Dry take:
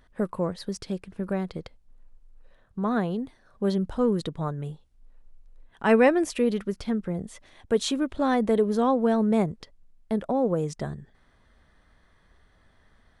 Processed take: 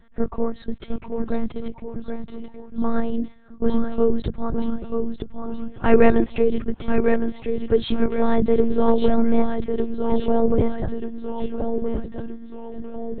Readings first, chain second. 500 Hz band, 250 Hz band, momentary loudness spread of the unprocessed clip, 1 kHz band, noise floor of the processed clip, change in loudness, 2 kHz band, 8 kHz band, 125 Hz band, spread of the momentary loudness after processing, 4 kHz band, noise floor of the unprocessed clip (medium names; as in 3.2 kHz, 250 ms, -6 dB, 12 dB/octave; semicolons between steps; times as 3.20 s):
+4.5 dB, +4.0 dB, 14 LU, +1.5 dB, -44 dBFS, +2.5 dB, +0.5 dB, under -35 dB, +1.5 dB, 15 LU, -1.0 dB, -62 dBFS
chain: ever faster or slower copies 695 ms, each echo -1 st, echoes 3, each echo -6 dB; monotone LPC vocoder at 8 kHz 230 Hz; bass shelf 430 Hz +7.5 dB; trim +1 dB